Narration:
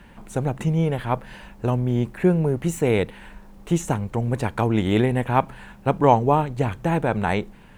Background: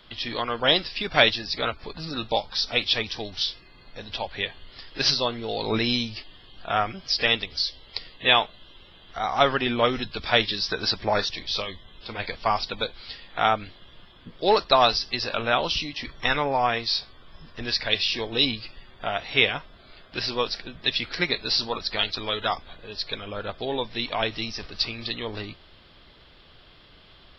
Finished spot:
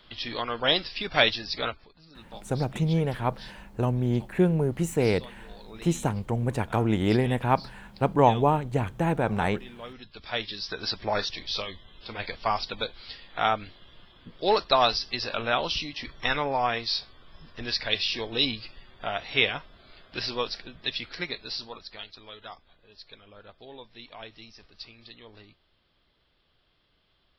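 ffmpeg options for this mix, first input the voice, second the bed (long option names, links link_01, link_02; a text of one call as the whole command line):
ffmpeg -i stem1.wav -i stem2.wav -filter_complex "[0:a]adelay=2150,volume=-3.5dB[link_01];[1:a]volume=14.5dB,afade=type=out:start_time=1.66:duration=0.22:silence=0.133352,afade=type=in:start_time=9.85:duration=1.46:silence=0.133352,afade=type=out:start_time=20.22:duration=1.84:silence=0.199526[link_02];[link_01][link_02]amix=inputs=2:normalize=0" out.wav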